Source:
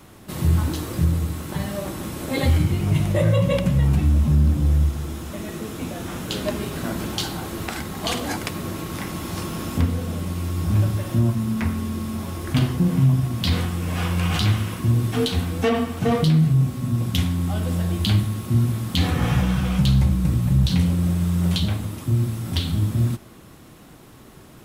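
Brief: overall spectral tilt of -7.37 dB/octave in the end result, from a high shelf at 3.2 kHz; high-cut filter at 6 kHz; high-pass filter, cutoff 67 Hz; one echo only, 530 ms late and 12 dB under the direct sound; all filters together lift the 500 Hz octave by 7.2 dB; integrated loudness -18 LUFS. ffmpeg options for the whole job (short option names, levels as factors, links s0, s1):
-af "highpass=67,lowpass=6000,equalizer=f=500:t=o:g=8.5,highshelf=f=3200:g=-6,aecho=1:1:530:0.251,volume=1.5"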